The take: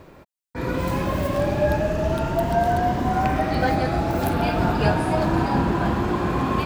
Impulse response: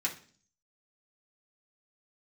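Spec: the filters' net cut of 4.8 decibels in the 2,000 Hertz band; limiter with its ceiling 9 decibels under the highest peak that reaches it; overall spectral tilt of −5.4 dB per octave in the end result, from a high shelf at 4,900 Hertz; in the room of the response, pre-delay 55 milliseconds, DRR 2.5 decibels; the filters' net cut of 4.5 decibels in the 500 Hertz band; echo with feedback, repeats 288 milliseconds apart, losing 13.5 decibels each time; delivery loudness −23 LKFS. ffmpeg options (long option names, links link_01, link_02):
-filter_complex "[0:a]equalizer=frequency=500:width_type=o:gain=-6,equalizer=frequency=2000:width_type=o:gain=-5,highshelf=frequency=4900:gain=-8,alimiter=limit=-18dB:level=0:latency=1,aecho=1:1:288|576:0.211|0.0444,asplit=2[link_01][link_02];[1:a]atrim=start_sample=2205,adelay=55[link_03];[link_02][link_03]afir=irnorm=-1:irlink=0,volume=-7dB[link_04];[link_01][link_04]amix=inputs=2:normalize=0,volume=2.5dB"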